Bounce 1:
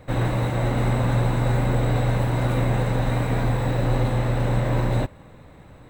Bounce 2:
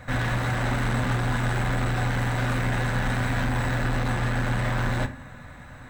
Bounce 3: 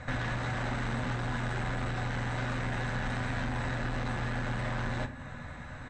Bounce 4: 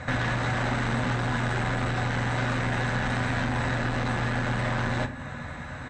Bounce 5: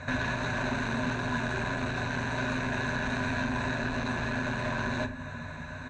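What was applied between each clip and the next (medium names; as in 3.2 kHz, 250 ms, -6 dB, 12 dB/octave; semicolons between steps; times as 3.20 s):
fifteen-band graphic EQ 400 Hz -11 dB, 1.6 kHz +10 dB, 6.3 kHz +6 dB; saturation -24.5 dBFS, distortion -9 dB; reverberation RT60 0.45 s, pre-delay 4 ms, DRR 7.5 dB; trim +2.5 dB
steep low-pass 7.7 kHz 36 dB/octave; compression 2.5:1, threshold -33 dBFS, peak gain reduction 8 dB; doubling 13 ms -14 dB
high-pass 64 Hz 6 dB/octave; trim +7 dB
rippled EQ curve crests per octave 1.5, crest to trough 10 dB; trim -4.5 dB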